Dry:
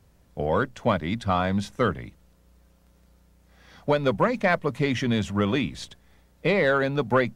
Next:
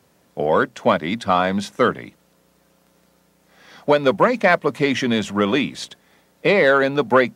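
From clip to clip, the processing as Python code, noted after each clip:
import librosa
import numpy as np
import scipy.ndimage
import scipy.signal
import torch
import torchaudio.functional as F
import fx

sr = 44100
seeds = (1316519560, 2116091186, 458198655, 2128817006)

y = scipy.signal.sosfilt(scipy.signal.butter(2, 220.0, 'highpass', fs=sr, output='sos'), x)
y = y * librosa.db_to_amplitude(7.0)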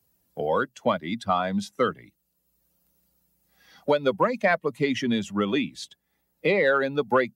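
y = fx.bin_expand(x, sr, power=1.5)
y = fx.band_squash(y, sr, depth_pct=40)
y = y * librosa.db_to_amplitude(-4.0)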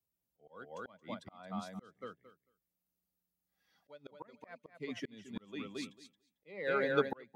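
y = fx.echo_feedback(x, sr, ms=223, feedback_pct=17, wet_db=-6)
y = fx.auto_swell(y, sr, attack_ms=531.0)
y = fx.upward_expand(y, sr, threshold_db=-51.0, expansion=1.5)
y = y * librosa.db_to_amplitude(-4.5)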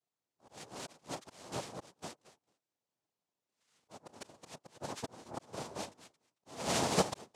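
y = fx.noise_vocoder(x, sr, seeds[0], bands=2)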